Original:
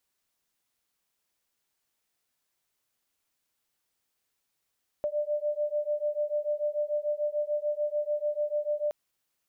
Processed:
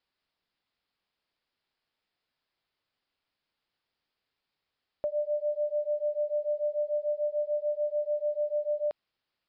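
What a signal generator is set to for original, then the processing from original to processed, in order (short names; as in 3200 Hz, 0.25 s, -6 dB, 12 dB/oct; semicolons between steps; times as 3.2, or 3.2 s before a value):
beating tones 591 Hz, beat 6.8 Hz, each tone -30 dBFS 3.87 s
downsampling 11025 Hz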